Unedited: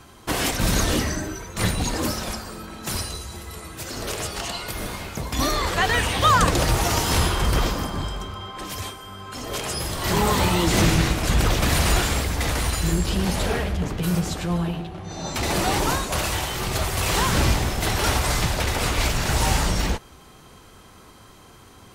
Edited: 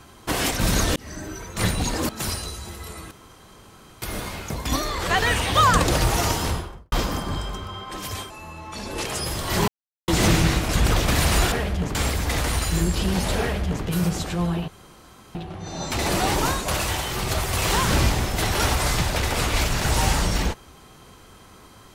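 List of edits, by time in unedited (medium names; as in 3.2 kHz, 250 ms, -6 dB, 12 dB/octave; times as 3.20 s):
0.96–1.45 s: fade in linear
2.09–2.76 s: delete
3.78–4.69 s: room tone
5.43–5.69 s: gain -4 dB
6.88–7.59 s: studio fade out
8.97–9.60 s: speed 83%
10.22–10.62 s: mute
13.52–13.95 s: copy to 12.06 s
14.79 s: insert room tone 0.67 s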